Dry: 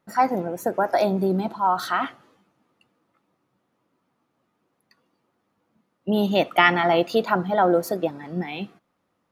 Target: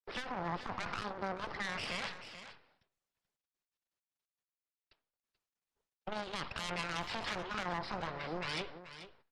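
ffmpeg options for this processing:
-filter_complex "[0:a]agate=range=0.0224:threshold=0.00251:ratio=3:detection=peak,aresample=11025,aeval=exprs='abs(val(0))':c=same,aresample=44100,acrossover=split=150|630[s0][s1][s2];[s0]acompressor=threshold=0.0708:ratio=4[s3];[s1]acompressor=threshold=0.01:ratio=4[s4];[s2]acompressor=threshold=0.0447:ratio=4[s5];[s3][s4][s5]amix=inputs=3:normalize=0,aeval=exprs='(tanh(20*val(0)+0.6)-tanh(0.6))/20':c=same,alimiter=level_in=2.99:limit=0.0631:level=0:latency=1:release=23,volume=0.335,lowshelf=f=97:g=-11,asplit=2[s6][s7];[s7]aecho=0:1:434:0.237[s8];[s6][s8]amix=inputs=2:normalize=0,volume=2.11" -ar 48000 -c:a libopus -b:a 32k

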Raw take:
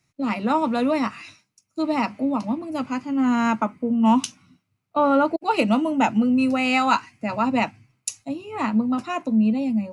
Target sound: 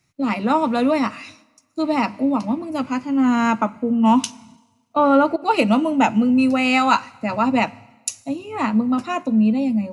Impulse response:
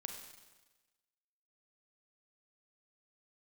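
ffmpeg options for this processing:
-filter_complex "[0:a]asplit=2[s0][s1];[1:a]atrim=start_sample=2205,adelay=11[s2];[s1][s2]afir=irnorm=-1:irlink=0,volume=0.188[s3];[s0][s3]amix=inputs=2:normalize=0,volume=1.41"

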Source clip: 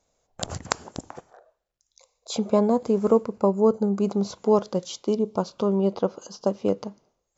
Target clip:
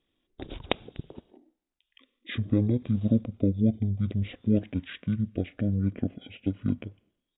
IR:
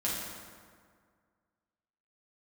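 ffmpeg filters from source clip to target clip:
-af "asetrate=22050,aresample=44100,atempo=2,volume=0.631"

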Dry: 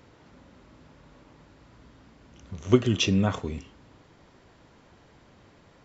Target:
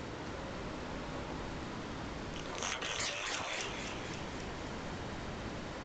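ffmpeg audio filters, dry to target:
-filter_complex "[0:a]acompressor=threshold=0.0355:ratio=6,afftfilt=real='re*lt(hypot(re,im),0.0141)':imag='im*lt(hypot(re,im),0.0141)':win_size=1024:overlap=0.75,asplit=9[s0][s1][s2][s3][s4][s5][s6][s7][s8];[s1]adelay=265,afreqshift=-65,volume=0.501[s9];[s2]adelay=530,afreqshift=-130,volume=0.305[s10];[s3]adelay=795,afreqshift=-195,volume=0.186[s11];[s4]adelay=1060,afreqshift=-260,volume=0.114[s12];[s5]adelay=1325,afreqshift=-325,volume=0.0692[s13];[s6]adelay=1590,afreqshift=-390,volume=0.0422[s14];[s7]adelay=1855,afreqshift=-455,volume=0.0257[s15];[s8]adelay=2120,afreqshift=-520,volume=0.0157[s16];[s0][s9][s10][s11][s12][s13][s14][s15][s16]amix=inputs=9:normalize=0,volume=4.47" -ar 16000 -c:a g722

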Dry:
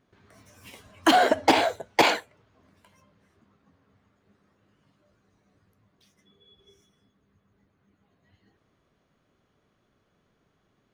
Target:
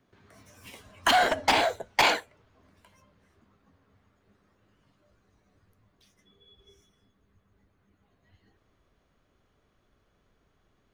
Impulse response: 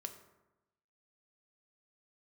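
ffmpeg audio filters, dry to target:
-filter_complex "[0:a]asubboost=boost=4:cutoff=67,acrossover=split=180|670|3500[s0][s1][s2][s3];[s1]aeval=exprs='0.0447*(abs(mod(val(0)/0.0447+3,4)-2)-1)':c=same[s4];[s0][s4][s2][s3]amix=inputs=4:normalize=0"

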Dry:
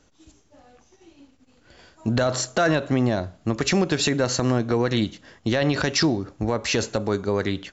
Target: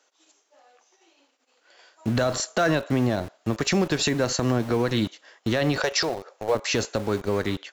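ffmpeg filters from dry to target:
-filter_complex "[0:a]asettb=1/sr,asplit=3[s0][s1][s2];[s0]atrim=end=5.784[s3];[s1]atrim=start=5.78:end=6.55,asetpts=PTS-STARTPTS,afade=t=in:d=0.004:c=qsin,afade=t=out:st=0.766:d=0.004:c=qsin,lowshelf=f=360:t=q:w=3:g=-10[s4];[s2]atrim=start=6.546[s5];[s3][s4]acrossfade=d=0.004:c1=hsin:c2=qsin[s6];[s6][s5]acrossfade=d=0.004:c1=qsin:c2=hsin,acrossover=split=440[s7][s8];[s7]aeval=exprs='val(0)*gte(abs(val(0)),0.0251)':c=same[s9];[s9][s8]amix=inputs=2:normalize=0,volume=0.841"

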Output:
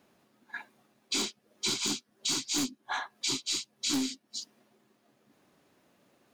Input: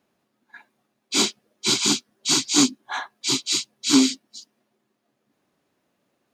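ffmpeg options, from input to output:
-af "aeval=exprs='0.596*(cos(1*acos(clip(val(0)/0.596,-1,1)))-cos(1*PI/2))+0.0422*(cos(4*acos(clip(val(0)/0.596,-1,1)))-cos(4*PI/2))+0.266*(cos(5*acos(clip(val(0)/0.596,-1,1)))-cos(5*PI/2))+0.119*(cos(7*acos(clip(val(0)/0.596,-1,1)))-cos(7*PI/2))':c=same,acompressor=threshold=0.0251:ratio=4"

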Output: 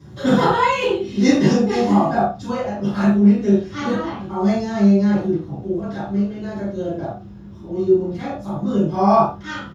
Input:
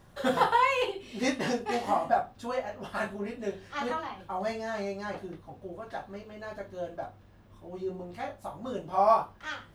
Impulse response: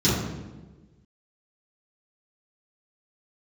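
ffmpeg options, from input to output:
-filter_complex "[0:a]asplit=2[s0][s1];[s1]adelay=35,volume=0.282[s2];[s0][s2]amix=inputs=2:normalize=0[s3];[1:a]atrim=start_sample=2205,afade=t=out:st=0.15:d=0.01,atrim=end_sample=7056[s4];[s3][s4]afir=irnorm=-1:irlink=0,volume=0.447"

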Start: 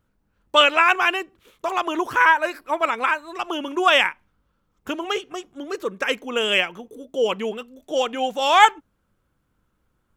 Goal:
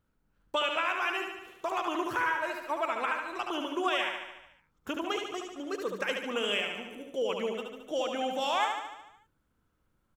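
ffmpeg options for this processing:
-filter_complex "[0:a]acompressor=threshold=0.0794:ratio=4,asplit=2[s0][s1];[s1]aecho=0:1:73|146|219|292|365|438|511|584:0.562|0.337|0.202|0.121|0.0729|0.0437|0.0262|0.0157[s2];[s0][s2]amix=inputs=2:normalize=0,volume=0.473"

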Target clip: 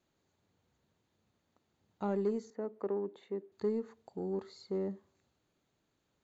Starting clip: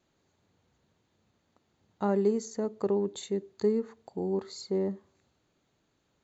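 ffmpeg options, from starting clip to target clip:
-filter_complex "[0:a]acrossover=split=4000[s0][s1];[s1]acompressor=threshold=0.001:ratio=4:attack=1:release=60[s2];[s0][s2]amix=inputs=2:normalize=0,aeval=exprs='0.168*(cos(1*acos(clip(val(0)/0.168,-1,1)))-cos(1*PI/2))+0.00668*(cos(5*acos(clip(val(0)/0.168,-1,1)))-cos(5*PI/2))':c=same,asettb=1/sr,asplit=3[s3][s4][s5];[s3]atrim=end=2.504[s6];[s4]atrim=start=2.5:end=3.52,asetpts=PTS-STARTPTS,afade=t=in:d=0.004:c=qsin,afade=t=out:st=1.016:d=0.004:c=qsin,acrossover=split=200 2500:gain=0.141 1 0.158[s7][s8][s9];[s7][s8][s9]amix=inputs=3:normalize=0[s10];[s5]atrim=start=3.516[s11];[s6][s10]acrossfade=d=0.004:c1=hsin:c2=qsin[s12];[s12][s11]acrossfade=d=0.004:c1=qsin:c2=hsin,volume=0.447"

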